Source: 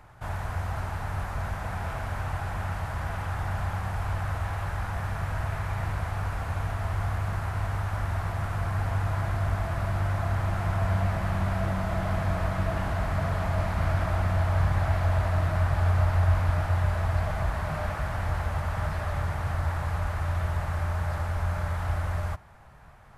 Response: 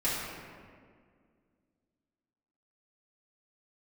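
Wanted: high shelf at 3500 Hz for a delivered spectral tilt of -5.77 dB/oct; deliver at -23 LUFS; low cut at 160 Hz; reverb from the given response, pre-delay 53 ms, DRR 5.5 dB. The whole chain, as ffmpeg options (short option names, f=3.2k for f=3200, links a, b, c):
-filter_complex "[0:a]highpass=160,highshelf=f=3.5k:g=-7.5,asplit=2[a][b];[1:a]atrim=start_sample=2205,adelay=53[c];[b][c]afir=irnorm=-1:irlink=0,volume=-14.5dB[d];[a][d]amix=inputs=2:normalize=0,volume=10.5dB"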